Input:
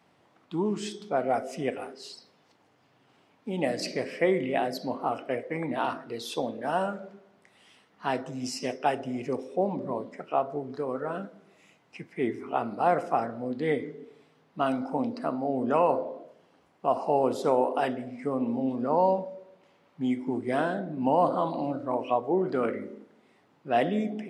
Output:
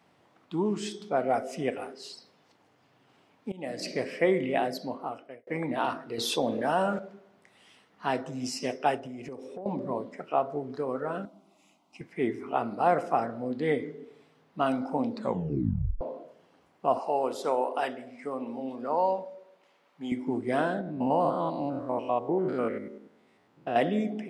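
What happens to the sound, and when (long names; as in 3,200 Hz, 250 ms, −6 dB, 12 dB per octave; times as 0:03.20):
0:03.52–0:03.98: fade in, from −20 dB
0:04.64–0:05.47: fade out
0:06.18–0:06.99: envelope flattener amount 50%
0:08.96–0:09.66: downward compressor, threshold −37 dBFS
0:11.25–0:12.01: phaser with its sweep stopped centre 460 Hz, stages 6
0:15.11: tape stop 0.90 s
0:16.99–0:20.12: high-pass filter 610 Hz 6 dB per octave
0:20.81–0:23.76: spectrum averaged block by block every 100 ms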